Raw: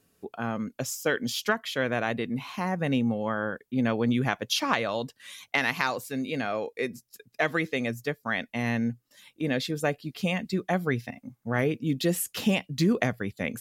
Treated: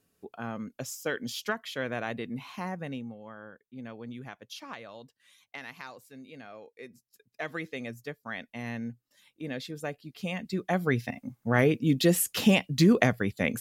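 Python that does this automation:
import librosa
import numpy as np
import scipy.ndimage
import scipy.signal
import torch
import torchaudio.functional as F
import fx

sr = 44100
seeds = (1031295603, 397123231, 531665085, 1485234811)

y = fx.gain(x, sr, db=fx.line((2.66, -5.5), (3.17, -16.5), (6.72, -16.5), (7.59, -8.5), (10.08, -8.5), (11.11, 3.0)))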